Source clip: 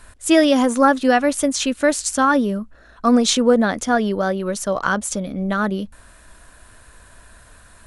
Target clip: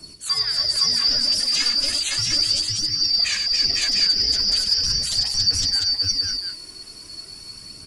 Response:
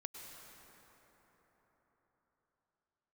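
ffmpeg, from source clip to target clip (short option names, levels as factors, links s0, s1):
-filter_complex "[0:a]afftfilt=real='real(if(lt(b,272),68*(eq(floor(b/68),0)*1+eq(floor(b/68),1)*2+eq(floor(b/68),2)*3+eq(floor(b/68),3)*0)+mod(b,68),b),0)':imag='imag(if(lt(b,272),68*(eq(floor(b/68),0)*1+eq(floor(b/68),1)*2+eq(floor(b/68),2)*3+eq(floor(b/68),3)*0)+mod(b,68),b),0)':win_size=2048:overlap=0.75,equalizer=f=910:w=6.3:g=-5,bandreject=f=60:t=h:w=6,bandreject=f=120:t=h:w=6,bandreject=f=180:t=h:w=6,bandreject=f=240:t=h:w=6,bandreject=f=300:t=h:w=6,bandreject=f=360:t=h:w=6,alimiter=limit=0.224:level=0:latency=1:release=29,acrossover=split=81|2200|5800[s0][s1][s2][s3];[s0]acompressor=threshold=0.00891:ratio=4[s4];[s1]acompressor=threshold=0.0112:ratio=4[s5];[s2]acompressor=threshold=0.0631:ratio=4[s6];[s3]acompressor=threshold=0.0126:ratio=4[s7];[s4][s5][s6][s7]amix=inputs=4:normalize=0,aphaser=in_gain=1:out_gain=1:delay=3.1:decay=0.55:speed=0.38:type=triangular,aecho=1:1:44|98|280|505|515|701:0.266|0.422|0.422|0.596|0.596|0.562"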